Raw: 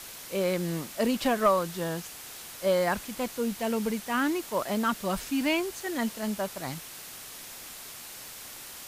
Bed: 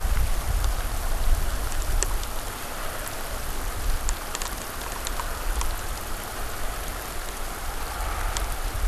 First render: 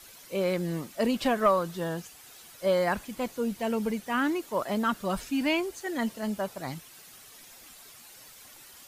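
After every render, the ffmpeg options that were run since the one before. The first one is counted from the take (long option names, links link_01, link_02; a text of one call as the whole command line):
ffmpeg -i in.wav -af "afftdn=noise_reduction=10:noise_floor=-44" out.wav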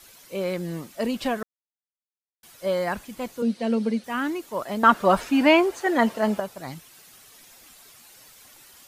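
ffmpeg -i in.wav -filter_complex "[0:a]asettb=1/sr,asplit=3[link_01][link_02][link_03];[link_01]atrim=end=3.424[link_04];[link_02]atrim=start=3.42:end=4.04,asetpts=PTS-STARTPTS,afade=type=in:duration=0.004:curve=qsin,afade=type=out:start_time=0.616:duration=0.004:curve=qsin,highpass=210,equalizer=frequency=230:width_type=q:width=4:gain=10,equalizer=frequency=520:width_type=q:width=4:gain=8,equalizer=frequency=940:width_type=q:width=4:gain=-4,equalizer=frequency=4200:width_type=q:width=4:gain=8,equalizer=frequency=7100:width_type=q:width=4:gain=-7,lowpass=frequency=9100:width=0.5412,lowpass=frequency=9100:width=1.3066[link_05];[link_03]atrim=start=4.036[link_06];[link_04][link_05]acrossfade=duration=0.004:curve1=hsin:curve2=qsin[link_07];[link_07][link_06]acrossfade=duration=0.004:curve1=qsin:curve2=hsin,asettb=1/sr,asplit=3[link_08][link_09][link_10];[link_08]atrim=end=4.834[link_11];[link_09]atrim=start=4.83:end=6.4,asetpts=PTS-STARTPTS,afade=type=in:duration=0.004:curve=qsin,afade=type=out:start_time=1.566:duration=0.004:curve=qsin,equalizer=frequency=830:width=0.31:gain=14[link_12];[link_10]atrim=start=6.396[link_13];[link_11][link_12]acrossfade=duration=0.004:curve1=hsin:curve2=qsin[link_14];[link_14][link_13]acrossfade=duration=0.004:curve1=qsin:curve2=hsin,asplit=3[link_15][link_16][link_17];[link_15]atrim=end=1.43,asetpts=PTS-STARTPTS,afade=type=out:start_time=1.426:duration=0.004:curve=hsin[link_18];[link_16]atrim=start=1.43:end=2.43,asetpts=PTS-STARTPTS,volume=0[link_19];[link_17]atrim=start=2.43,asetpts=PTS-STARTPTS,afade=type=in:duration=0.004:curve=hsin[link_20];[link_18][link_19][link_20]concat=n=3:v=0:a=1" out.wav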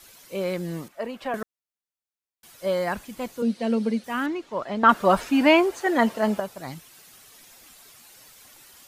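ffmpeg -i in.wav -filter_complex "[0:a]asettb=1/sr,asplit=3[link_01][link_02][link_03];[link_01]atrim=end=0.884[link_04];[link_02]atrim=start=0.88:end=1.34,asetpts=PTS-STARTPTS,afade=type=in:duration=0.004:curve=qsin,afade=type=out:start_time=0.456:duration=0.004:curve=qsin,acrossover=split=460 2200:gain=0.251 1 0.224[link_05][link_06][link_07];[link_05][link_06][link_07]amix=inputs=3:normalize=0[link_08];[link_03]atrim=start=1.336[link_09];[link_04][link_08]acrossfade=duration=0.004:curve1=hsin:curve2=qsin[link_10];[link_10][link_09]acrossfade=duration=0.004:curve1=qsin:curve2=hsin,asettb=1/sr,asplit=3[link_11][link_12][link_13];[link_11]atrim=end=4.264[link_14];[link_12]atrim=start=4.26:end=4.89,asetpts=PTS-STARTPTS,afade=type=in:duration=0.004:curve=qsin,afade=type=out:start_time=0.626:duration=0.004:curve=qsin,lowpass=4300[link_15];[link_13]atrim=start=4.886[link_16];[link_14][link_15]acrossfade=duration=0.004:curve1=hsin:curve2=qsin[link_17];[link_17][link_16]acrossfade=duration=0.004:curve1=qsin:curve2=hsin" out.wav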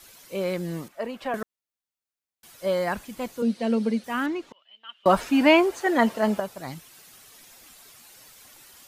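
ffmpeg -i in.wav -filter_complex "[0:a]asettb=1/sr,asplit=3[link_01][link_02][link_03];[link_01]atrim=end=4.524[link_04];[link_02]atrim=start=4.52:end=5.06,asetpts=PTS-STARTPTS,afade=type=in:duration=0.004:curve=qsin,afade=type=out:start_time=0.536:duration=0.004:curve=qsin,bandpass=frequency=3000:width_type=q:width=20[link_05];[link_03]atrim=start=5.056[link_06];[link_04][link_05]acrossfade=duration=0.004:curve1=hsin:curve2=qsin[link_07];[link_07][link_06]acrossfade=duration=0.004:curve1=qsin:curve2=hsin" out.wav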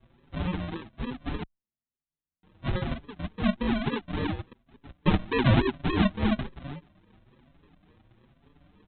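ffmpeg -i in.wav -filter_complex "[0:a]aresample=8000,acrusher=samples=15:mix=1:aa=0.000001:lfo=1:lforange=9:lforate=3.5,aresample=44100,asplit=2[link_01][link_02];[link_02]adelay=5.7,afreqshift=1.1[link_03];[link_01][link_03]amix=inputs=2:normalize=1" out.wav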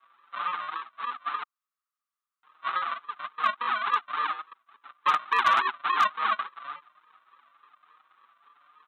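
ffmpeg -i in.wav -af "highpass=frequency=1200:width_type=q:width=10,asoftclip=type=hard:threshold=-14.5dB" out.wav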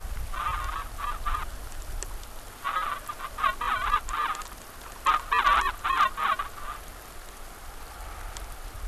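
ffmpeg -i in.wav -i bed.wav -filter_complex "[1:a]volume=-11dB[link_01];[0:a][link_01]amix=inputs=2:normalize=0" out.wav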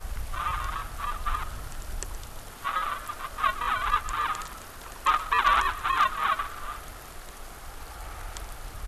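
ffmpeg -i in.wav -filter_complex "[0:a]asplit=7[link_01][link_02][link_03][link_04][link_05][link_06][link_07];[link_02]adelay=122,afreqshift=38,volume=-15.5dB[link_08];[link_03]adelay=244,afreqshift=76,volume=-20.4dB[link_09];[link_04]adelay=366,afreqshift=114,volume=-25.3dB[link_10];[link_05]adelay=488,afreqshift=152,volume=-30.1dB[link_11];[link_06]adelay=610,afreqshift=190,volume=-35dB[link_12];[link_07]adelay=732,afreqshift=228,volume=-39.9dB[link_13];[link_01][link_08][link_09][link_10][link_11][link_12][link_13]amix=inputs=7:normalize=0" out.wav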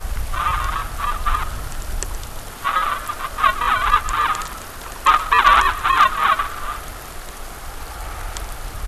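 ffmpeg -i in.wav -af "volume=9.5dB" out.wav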